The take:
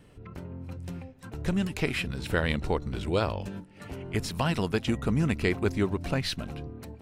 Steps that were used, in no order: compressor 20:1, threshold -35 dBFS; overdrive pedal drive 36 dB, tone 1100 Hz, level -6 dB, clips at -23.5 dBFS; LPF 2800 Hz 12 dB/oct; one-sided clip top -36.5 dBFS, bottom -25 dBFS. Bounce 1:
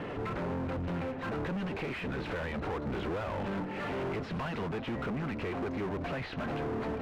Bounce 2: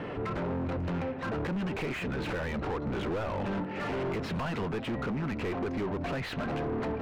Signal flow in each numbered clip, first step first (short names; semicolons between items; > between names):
compressor > overdrive pedal > LPF > one-sided clip; LPF > compressor > one-sided clip > overdrive pedal